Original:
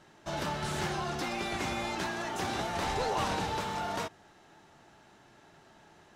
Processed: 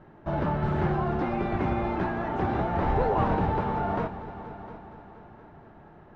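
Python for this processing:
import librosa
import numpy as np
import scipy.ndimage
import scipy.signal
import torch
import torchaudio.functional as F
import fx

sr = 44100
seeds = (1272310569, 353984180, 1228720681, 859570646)

y = scipy.signal.sosfilt(scipy.signal.butter(2, 1600.0, 'lowpass', fs=sr, output='sos'), x)
y = fx.tilt_eq(y, sr, slope=-2.0)
y = fx.echo_heads(y, sr, ms=235, heads='all three', feedback_pct=47, wet_db=-18.0)
y = y * 10.0 ** (5.0 / 20.0)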